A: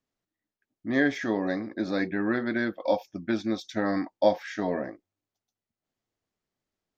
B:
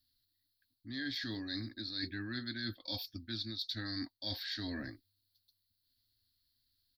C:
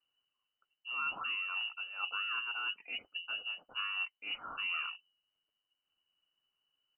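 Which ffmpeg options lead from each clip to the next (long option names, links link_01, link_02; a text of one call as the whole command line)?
ffmpeg -i in.wav -af "firequalizer=gain_entry='entry(110,0);entry(170,-27);entry(250,-10);entry(450,-29);entry(990,-25);entry(1600,-10);entry(2300,-15);entry(4300,14);entry(6300,-17);entry(11000,6)':delay=0.05:min_phase=1,areverse,acompressor=threshold=-45dB:ratio=10,areverse,volume=8.5dB" out.wav
ffmpeg -i in.wav -af "lowpass=frequency=2600:width_type=q:width=0.5098,lowpass=frequency=2600:width_type=q:width=0.6013,lowpass=frequency=2600:width_type=q:width=0.9,lowpass=frequency=2600:width_type=q:width=2.563,afreqshift=-3000,volume=4dB" out.wav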